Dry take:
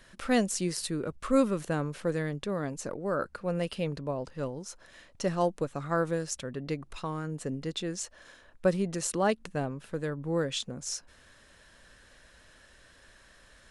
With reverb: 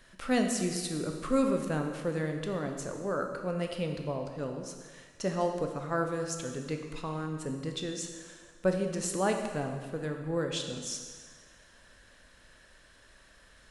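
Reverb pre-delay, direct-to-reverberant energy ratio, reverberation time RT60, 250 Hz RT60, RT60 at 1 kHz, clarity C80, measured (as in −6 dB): 7 ms, 3.5 dB, 1.6 s, 1.6 s, 1.6 s, 7.0 dB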